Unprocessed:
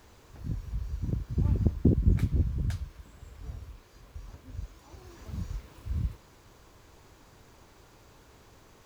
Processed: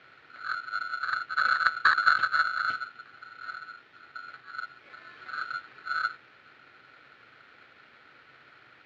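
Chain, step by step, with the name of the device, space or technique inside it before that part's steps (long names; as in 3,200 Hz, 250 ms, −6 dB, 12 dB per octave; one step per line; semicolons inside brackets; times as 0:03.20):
ring modulator pedal into a guitar cabinet (ring modulator with a square carrier 1,400 Hz; loudspeaker in its box 100–3,500 Hz, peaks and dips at 130 Hz +7 dB, 190 Hz −5 dB, 990 Hz −10 dB, 2,100 Hz +3 dB)
level +2 dB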